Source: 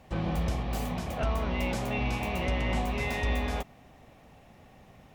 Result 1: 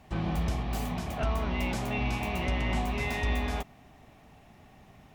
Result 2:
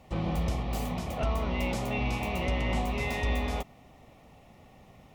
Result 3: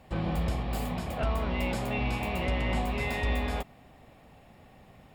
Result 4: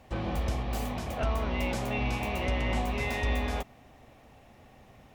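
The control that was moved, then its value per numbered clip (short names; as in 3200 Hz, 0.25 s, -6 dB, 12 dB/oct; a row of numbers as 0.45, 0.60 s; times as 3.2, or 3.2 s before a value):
notch, frequency: 520, 1600, 6000, 170 Hz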